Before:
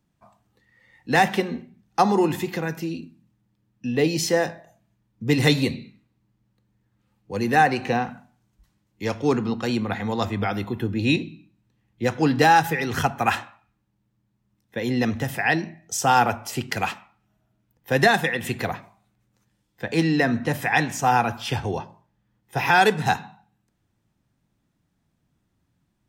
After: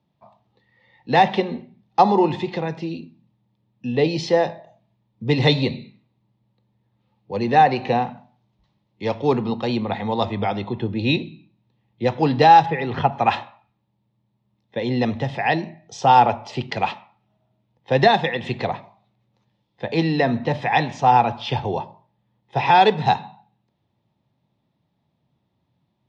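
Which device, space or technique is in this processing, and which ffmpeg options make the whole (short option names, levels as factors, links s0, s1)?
guitar cabinet: -filter_complex "[0:a]highpass=85,equalizer=f=130:t=q:w=4:g=4,equalizer=f=300:t=q:w=4:g=-6,equalizer=f=600:t=q:w=4:g=6,equalizer=f=890:t=q:w=4:g=7,equalizer=f=1500:t=q:w=4:g=-9,equalizer=f=3700:t=q:w=4:g=5,lowpass=f=4600:w=0.5412,lowpass=f=4600:w=1.3066,asplit=3[s0][s1][s2];[s0]afade=t=out:st=12.65:d=0.02[s3];[s1]lowpass=2800,afade=t=in:st=12.65:d=0.02,afade=t=out:st=13.11:d=0.02[s4];[s2]afade=t=in:st=13.11:d=0.02[s5];[s3][s4][s5]amix=inputs=3:normalize=0,equalizer=f=330:w=1.5:g=4"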